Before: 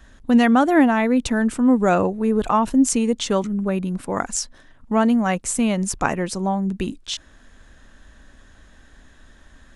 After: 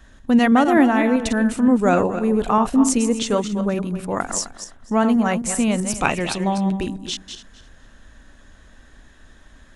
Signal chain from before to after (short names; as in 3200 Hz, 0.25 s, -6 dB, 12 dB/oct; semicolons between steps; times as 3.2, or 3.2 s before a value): regenerating reverse delay 0.129 s, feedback 41%, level -8 dB; 6.01–6.77 band shelf 3100 Hz +11 dB 1.1 oct